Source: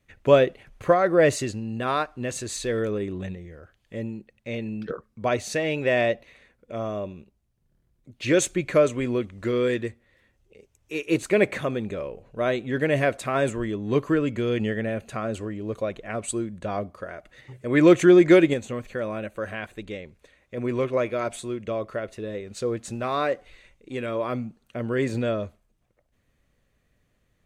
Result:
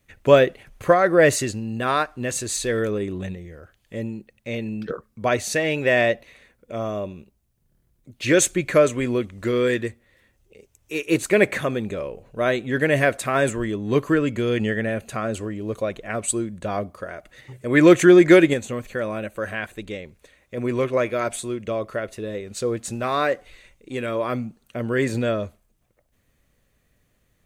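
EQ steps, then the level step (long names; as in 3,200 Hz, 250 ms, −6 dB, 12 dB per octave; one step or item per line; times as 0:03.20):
high-shelf EQ 8,300 Hz +10.5 dB
dynamic equaliser 1,700 Hz, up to +4 dB, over −39 dBFS, Q 2.4
+2.5 dB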